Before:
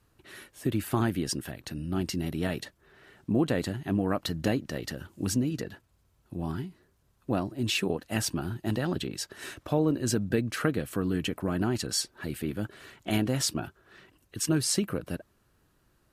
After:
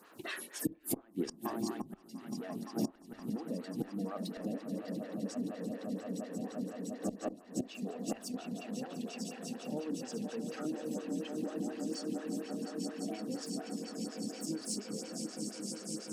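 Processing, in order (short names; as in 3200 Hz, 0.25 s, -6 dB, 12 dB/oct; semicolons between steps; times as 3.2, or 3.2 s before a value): swelling echo 0.173 s, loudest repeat 8, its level -8 dB; in parallel at -10 dB: sine folder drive 8 dB, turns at -9 dBFS; on the sum: Chebyshev high-pass 200 Hz, order 3; flipped gate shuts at -15 dBFS, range -30 dB; compressor 16:1, threshold -47 dBFS, peak gain reduction 25 dB; on a send at -15 dB: LPF 1000 Hz + reverb RT60 0.65 s, pre-delay 26 ms; on the sum: spectral noise reduction 9 dB; photocell phaser 4.2 Hz; gain +17.5 dB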